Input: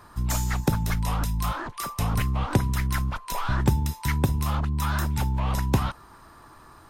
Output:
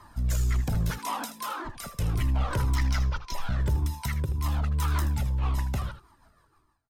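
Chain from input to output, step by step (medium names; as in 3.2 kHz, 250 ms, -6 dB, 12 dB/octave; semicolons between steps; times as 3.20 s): fade out at the end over 2.04 s; 0.90–1.65 s: elliptic high-pass 230 Hz, stop band 40 dB; 2.75–3.34 s: resonant high shelf 7.2 kHz -8.5 dB, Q 3; in parallel at -2 dB: peak limiter -17.5 dBFS, peak gain reduction 9 dB; 3.86–4.44 s: on the sum: compression 6:1, threshold -22 dBFS, peak gain reduction 8.5 dB; rotary cabinet horn 0.65 Hz, later 6.3 Hz, at 3.86 s; hard clipper -20 dBFS, distortion -11 dB; on a send: delay 79 ms -12 dB; on the sum: Shepard-style flanger falling 1.8 Hz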